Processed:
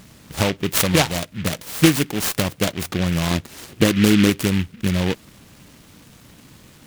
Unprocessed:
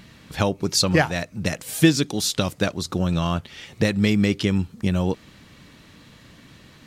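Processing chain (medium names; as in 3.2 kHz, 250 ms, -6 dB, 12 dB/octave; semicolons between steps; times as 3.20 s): 3.31–4.30 s: peaking EQ 310 Hz +8.5 dB 0.77 oct; delay time shaken by noise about 2.2 kHz, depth 0.16 ms; trim +1.5 dB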